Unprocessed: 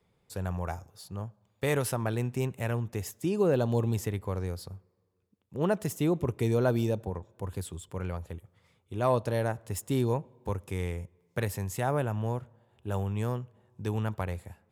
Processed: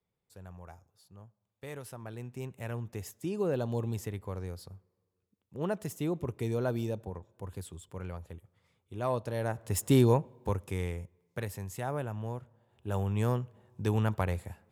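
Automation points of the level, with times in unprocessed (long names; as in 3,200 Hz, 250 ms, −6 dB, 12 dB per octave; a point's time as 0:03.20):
0:01.84 −15 dB
0:02.85 −5.5 dB
0:09.34 −5.5 dB
0:09.87 +6 dB
0:11.44 −6 dB
0:12.40 −6 dB
0:13.30 +2.5 dB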